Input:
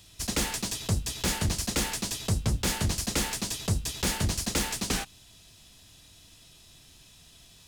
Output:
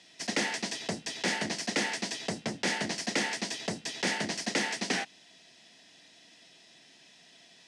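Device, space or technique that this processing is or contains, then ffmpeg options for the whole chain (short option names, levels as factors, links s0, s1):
television speaker: -af "highpass=f=200:w=0.5412,highpass=f=200:w=1.3066,equalizer=f=690:t=q:w=4:g=5,equalizer=f=1200:t=q:w=4:g=-7,equalizer=f=1900:t=q:w=4:g=9,equalizer=f=3800:t=q:w=4:g=-3,equalizer=f=7100:t=q:w=4:g=-6,lowpass=f=7300:w=0.5412,lowpass=f=7300:w=1.3066"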